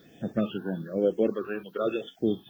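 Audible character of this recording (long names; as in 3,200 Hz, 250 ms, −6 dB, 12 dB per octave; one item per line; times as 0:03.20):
a quantiser's noise floor 12 bits, dither triangular
phaser sweep stages 6, 1.1 Hz, lowest notch 530–1,100 Hz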